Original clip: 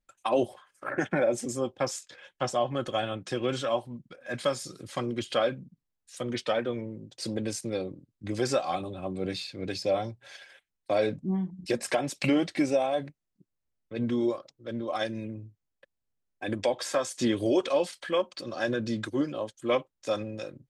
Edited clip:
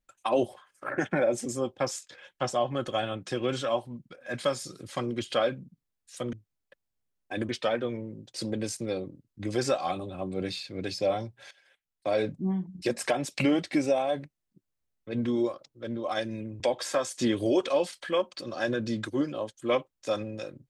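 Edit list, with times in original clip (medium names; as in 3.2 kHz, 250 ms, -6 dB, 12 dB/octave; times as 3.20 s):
10.35–11.10 s: fade in, from -17 dB
15.44–16.60 s: move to 6.33 s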